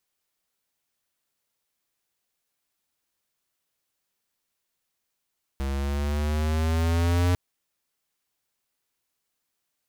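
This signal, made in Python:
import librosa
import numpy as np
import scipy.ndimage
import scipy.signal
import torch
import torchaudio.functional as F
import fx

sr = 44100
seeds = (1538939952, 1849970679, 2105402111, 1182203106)

y = fx.riser_tone(sr, length_s=1.75, level_db=-21, wave='square', hz=67.2, rise_st=5.0, swell_db=7)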